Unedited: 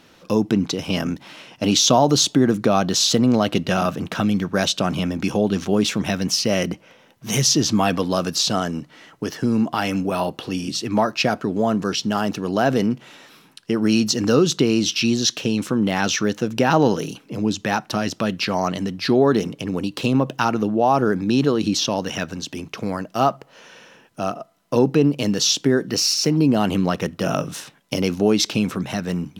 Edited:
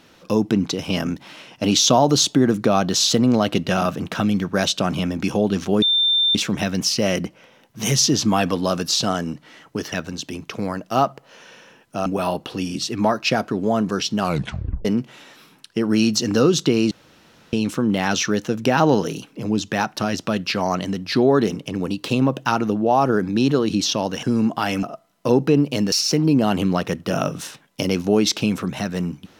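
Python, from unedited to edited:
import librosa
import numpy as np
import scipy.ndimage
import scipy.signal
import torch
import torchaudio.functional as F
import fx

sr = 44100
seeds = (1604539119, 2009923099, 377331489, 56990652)

y = fx.edit(x, sr, fx.insert_tone(at_s=5.82, length_s=0.53, hz=3580.0, db=-14.5),
    fx.swap(start_s=9.39, length_s=0.6, other_s=22.16, other_length_s=2.14),
    fx.tape_stop(start_s=12.12, length_s=0.66),
    fx.room_tone_fill(start_s=14.84, length_s=0.62),
    fx.cut(start_s=25.39, length_s=0.66), tone=tone)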